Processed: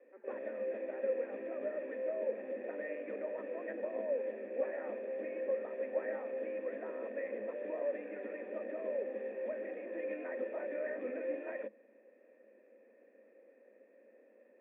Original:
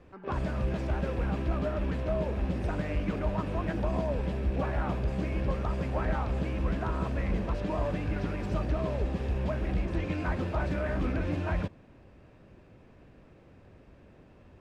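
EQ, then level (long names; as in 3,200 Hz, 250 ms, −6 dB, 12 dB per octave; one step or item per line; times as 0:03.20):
formant resonators in series e
Chebyshev high-pass filter 210 Hz, order 10
+5.5 dB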